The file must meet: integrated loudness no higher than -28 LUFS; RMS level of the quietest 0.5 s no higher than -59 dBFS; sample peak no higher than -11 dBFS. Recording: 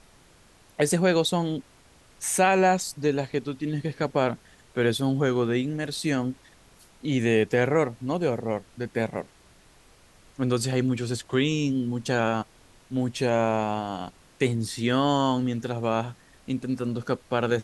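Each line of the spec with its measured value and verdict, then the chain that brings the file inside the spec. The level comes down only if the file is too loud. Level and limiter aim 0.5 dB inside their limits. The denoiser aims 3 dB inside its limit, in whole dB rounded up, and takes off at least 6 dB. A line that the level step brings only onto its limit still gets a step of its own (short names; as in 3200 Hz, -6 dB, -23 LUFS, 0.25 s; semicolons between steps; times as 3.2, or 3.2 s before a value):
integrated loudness -26.0 LUFS: fail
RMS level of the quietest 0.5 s -56 dBFS: fail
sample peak -9.0 dBFS: fail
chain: denoiser 6 dB, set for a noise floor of -56 dBFS; gain -2.5 dB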